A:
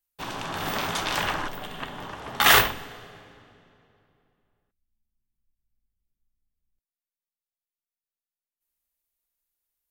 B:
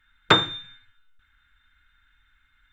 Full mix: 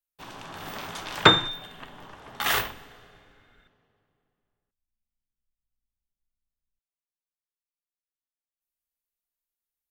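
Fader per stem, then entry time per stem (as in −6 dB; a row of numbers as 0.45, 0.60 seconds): −8.5, +1.5 decibels; 0.00, 0.95 seconds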